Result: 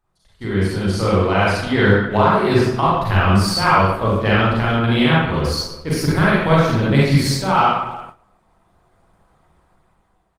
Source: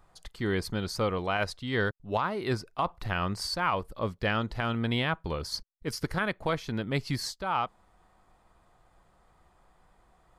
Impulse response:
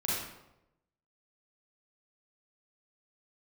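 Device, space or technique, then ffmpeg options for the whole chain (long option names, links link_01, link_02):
speakerphone in a meeting room: -filter_complex "[1:a]atrim=start_sample=2205[link_01];[0:a][link_01]afir=irnorm=-1:irlink=0,asplit=2[link_02][link_03];[link_03]adelay=320,highpass=300,lowpass=3400,asoftclip=type=hard:threshold=-17dB,volume=-19dB[link_04];[link_02][link_04]amix=inputs=2:normalize=0,dynaudnorm=framelen=150:gausssize=13:maxgain=13dB,agate=range=-12dB:threshold=-35dB:ratio=16:detection=peak" -ar 48000 -c:a libopus -b:a 24k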